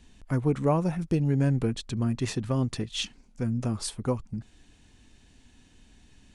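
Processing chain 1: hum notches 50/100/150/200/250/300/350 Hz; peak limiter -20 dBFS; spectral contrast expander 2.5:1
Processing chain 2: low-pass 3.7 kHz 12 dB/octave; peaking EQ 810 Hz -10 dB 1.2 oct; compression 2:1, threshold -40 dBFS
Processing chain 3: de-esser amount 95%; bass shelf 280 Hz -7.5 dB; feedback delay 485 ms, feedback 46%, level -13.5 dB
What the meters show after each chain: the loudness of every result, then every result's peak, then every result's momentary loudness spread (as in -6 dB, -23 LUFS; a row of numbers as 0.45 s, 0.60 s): -35.0 LUFS, -38.5 LUFS, -33.0 LUFS; -20.0 dBFS, -24.0 dBFS, -15.0 dBFS; 15 LU, 7 LU, 15 LU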